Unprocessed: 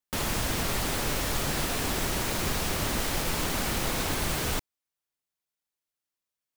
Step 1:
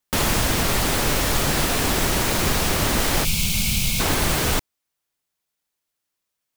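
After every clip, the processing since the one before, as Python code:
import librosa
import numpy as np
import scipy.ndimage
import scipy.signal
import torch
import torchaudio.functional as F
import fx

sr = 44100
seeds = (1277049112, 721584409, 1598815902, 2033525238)

y = fx.spec_box(x, sr, start_s=3.24, length_s=0.76, low_hz=220.0, high_hz=2100.0, gain_db=-19)
y = fx.rider(y, sr, range_db=10, speed_s=0.5)
y = F.gain(torch.from_numpy(y), 8.5).numpy()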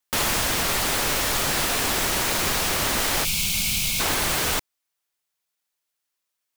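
y = fx.low_shelf(x, sr, hz=420.0, db=-9.5)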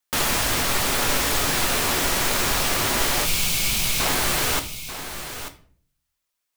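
y = x + 10.0 ** (-11.0 / 20.0) * np.pad(x, (int(889 * sr / 1000.0), 0))[:len(x)]
y = fx.room_shoebox(y, sr, seeds[0], volume_m3=49.0, walls='mixed', distance_m=0.3)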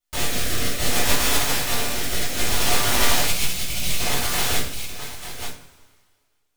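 y = np.maximum(x, 0.0)
y = fx.rotary_switch(y, sr, hz=0.6, then_hz=5.5, switch_at_s=4.21)
y = fx.rev_double_slope(y, sr, seeds[1], early_s=0.34, late_s=1.8, knee_db=-19, drr_db=-8.0)
y = F.gain(torch.from_numpy(y), -2.5).numpy()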